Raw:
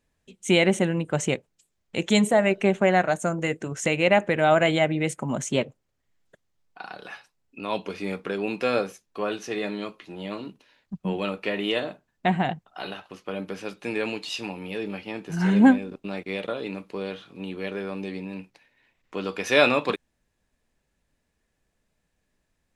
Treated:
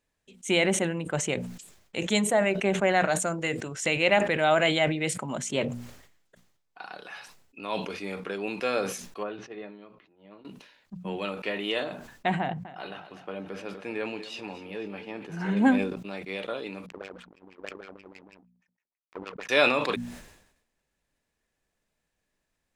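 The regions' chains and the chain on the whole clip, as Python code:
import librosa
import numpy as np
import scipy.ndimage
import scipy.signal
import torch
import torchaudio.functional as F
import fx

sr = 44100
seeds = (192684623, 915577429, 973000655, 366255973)

y = fx.chain(x, sr, fx.peak_eq(hz=4200.0, db=5.5, octaves=1.4),
    fx.notch(hz=6400.0, q=12.0), at=(2.89, 5.48))
y = fx.chain(y, sr, fx.spacing_loss(db_at_10k=33),
    fx.upward_expand(threshold_db=-40.0, expansion=2.5), at=(9.23, 10.45))
y = fx.chain(y, sr, fx.high_shelf(hz=3300.0, db=-11.0),
    fx.echo_feedback(ms=248, feedback_pct=49, wet_db=-15.5), at=(12.4, 15.57))
y = fx.chain(y, sr, fx.low_shelf(hz=220.0, db=-11.5),
    fx.filter_lfo_lowpass(shape='sine', hz=6.3, low_hz=250.0, high_hz=2600.0, q=3.7),
    fx.power_curve(exponent=2.0), at=(16.86, 19.49))
y = fx.low_shelf(y, sr, hz=340.0, db=-5.5)
y = fx.hum_notches(y, sr, base_hz=60, count=4)
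y = fx.sustainer(y, sr, db_per_s=69.0)
y = F.gain(torch.from_numpy(y), -2.5).numpy()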